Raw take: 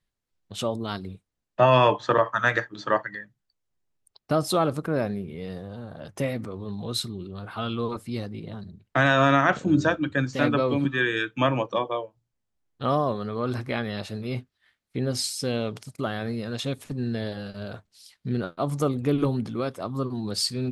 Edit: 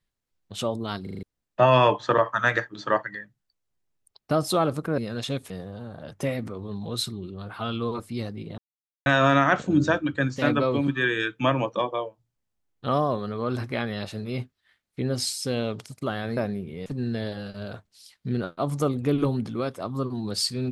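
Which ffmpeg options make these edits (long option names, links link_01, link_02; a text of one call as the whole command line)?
ffmpeg -i in.wav -filter_complex "[0:a]asplit=12[link_01][link_02][link_03][link_04][link_05][link_06][link_07][link_08][link_09][link_10][link_11][link_12];[link_01]atrim=end=1.072[link_13];[link_02]atrim=start=1.028:end=1.072[link_14];[link_03]atrim=start=1.028:end=1.072[link_15];[link_04]atrim=start=1.028:end=1.072[link_16];[link_05]atrim=start=1.028:end=1.072[link_17];[link_06]atrim=start=1.228:end=4.982[link_18];[link_07]atrim=start=16.338:end=16.862[link_19];[link_08]atrim=start=5.468:end=8.55,asetpts=PTS-STARTPTS,afade=type=out:start_time=3.078:duration=0.004:curve=hsin[link_20];[link_09]atrim=start=8.55:end=9.03,asetpts=PTS-STARTPTS,volume=0[link_21];[link_10]atrim=start=9.03:end=16.342,asetpts=PTS-STARTPTS,afade=type=in:duration=0.004:curve=hsin[link_22];[link_11]atrim=start=4.978:end=5.472[link_23];[link_12]atrim=start=16.858[link_24];[link_13][link_14]acrossfade=duration=0.004:curve1=hsin:curve2=hsin[link_25];[link_25][link_15]acrossfade=duration=0.004:curve1=hsin:curve2=hsin[link_26];[link_26][link_16]acrossfade=duration=0.004:curve1=hsin:curve2=hsin[link_27];[link_27][link_17]acrossfade=duration=0.004:curve1=hsin:curve2=hsin[link_28];[link_28][link_18]acrossfade=duration=0.004:curve1=hsin:curve2=hsin[link_29];[link_29][link_19]acrossfade=duration=0.004:curve1=hsin:curve2=hsin[link_30];[link_20][link_21][link_22]concat=n=3:v=0:a=1[link_31];[link_30][link_31]acrossfade=duration=0.004:curve1=hsin:curve2=hsin[link_32];[link_32][link_23]acrossfade=duration=0.004:curve1=hsin:curve2=hsin[link_33];[link_33][link_24]acrossfade=duration=0.004:curve1=hsin:curve2=hsin" out.wav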